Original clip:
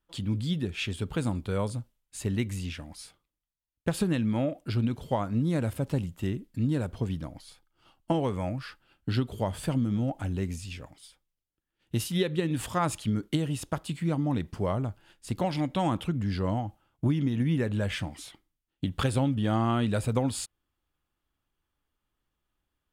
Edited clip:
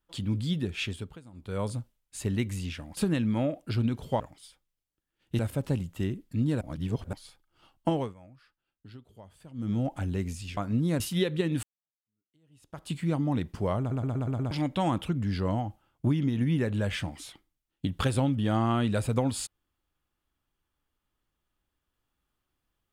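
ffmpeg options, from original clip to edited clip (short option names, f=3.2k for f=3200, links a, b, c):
-filter_complex "[0:a]asplit=19[a][b][c][d][e][f][g][h][i][j][k][l][m][n][o][p][q][r][s];[a]atrim=end=1.2,asetpts=PTS-STARTPTS,afade=t=out:st=0.83:d=0.37:silence=0.0794328[t];[b]atrim=start=1.2:end=1.32,asetpts=PTS-STARTPTS,volume=-22dB[u];[c]atrim=start=1.32:end=2.972,asetpts=PTS-STARTPTS,afade=t=in:d=0.37:silence=0.0794328[v];[d]atrim=start=3.958:end=5.192[w];[e]atrim=start=10.798:end=11.992[x];[f]atrim=start=5.618:end=6.842[y];[g]atrim=start=6.838:end=7.362,asetpts=PTS-STARTPTS,areverse[z];[h]atrim=start=7.358:end=8.37,asetpts=PTS-STARTPTS,afade=t=out:st=0.762:d=0.25:c=qsin:silence=0.0944061[aa];[i]atrim=start=8.37:end=9.77,asetpts=PTS-STARTPTS,volume=-20.5dB[ab];[j]atrim=start=9.77:end=10.802,asetpts=PTS-STARTPTS,afade=t=in:d=0.25:c=qsin:silence=0.0944061[ac];[k]atrim=start=5.188:end=5.622[ad];[l]atrim=start=11.988:end=12.62,asetpts=PTS-STARTPTS,afade=t=out:st=0.628:d=0.004:c=hsin[ae];[m]atrim=start=12.62:end=14.902,asetpts=PTS-STARTPTS,afade=t=in:d=1.27:c=exp[af];[n]atrim=start=14.778:end=14.902[ag];[o]atrim=start=14.778:end=14.902[ah];[p]atrim=start=14.778:end=14.902[ai];[q]atrim=start=14.778:end=14.902[aj];[r]atrim=start=14.778:end=14.902[ak];[s]atrim=start=15.498[al];[t][u][v]concat=n=3:v=0:a=1[am];[am][w]acrossfade=d=0.004:c1=hsin:c2=hsin[an];[an][x]acrossfade=d=0.004:c1=hsin:c2=hsin[ao];[ao][y]acrossfade=d=0.004:c1=hsin:c2=hsin[ap];[ap][z]acrossfade=d=0.004:c1=hsin:c2=hsin[aq];[aa][ab][ac]concat=n=3:v=0:a=1[ar];[aq][ar]acrossfade=d=0.004:c1=hsin:c2=hsin[as];[as][ad]acrossfade=d=0.004:c1=hsin:c2=hsin[at];[ae][af]concat=n=2:v=0:a=1[au];[at][au]acrossfade=d=0.004:c1=hsin:c2=hsin[av];[av][ag]acrossfade=d=0.004:c1=hsin:c2=hsin[aw];[aw][ah]acrossfade=d=0.004:c1=hsin:c2=hsin[ax];[ax][ai]acrossfade=d=0.004:c1=hsin:c2=hsin[ay];[ay][aj]acrossfade=d=0.004:c1=hsin:c2=hsin[az];[az][ak]acrossfade=d=0.004:c1=hsin:c2=hsin[ba];[ba][al]acrossfade=d=0.004:c1=hsin:c2=hsin"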